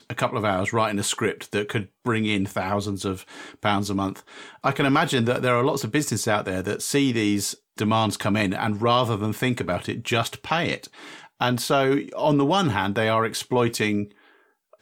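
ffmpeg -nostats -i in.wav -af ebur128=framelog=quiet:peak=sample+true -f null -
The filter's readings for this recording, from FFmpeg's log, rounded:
Integrated loudness:
  I:         -23.7 LUFS
  Threshold: -34.0 LUFS
Loudness range:
  LRA:         3.2 LU
  Threshold: -43.9 LUFS
  LRA low:   -25.9 LUFS
  LRA high:  -22.7 LUFS
Sample peak:
  Peak:       -5.3 dBFS
True peak:
  Peak:       -5.3 dBFS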